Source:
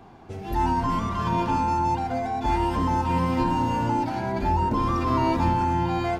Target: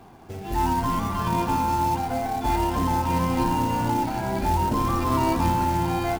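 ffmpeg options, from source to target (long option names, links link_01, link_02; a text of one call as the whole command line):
ffmpeg -i in.wav -filter_complex "[0:a]asplit=5[link_01][link_02][link_03][link_04][link_05];[link_02]adelay=432,afreqshift=-66,volume=-14dB[link_06];[link_03]adelay=864,afreqshift=-132,volume=-21.1dB[link_07];[link_04]adelay=1296,afreqshift=-198,volume=-28.3dB[link_08];[link_05]adelay=1728,afreqshift=-264,volume=-35.4dB[link_09];[link_01][link_06][link_07][link_08][link_09]amix=inputs=5:normalize=0,acrusher=bits=4:mode=log:mix=0:aa=0.000001" out.wav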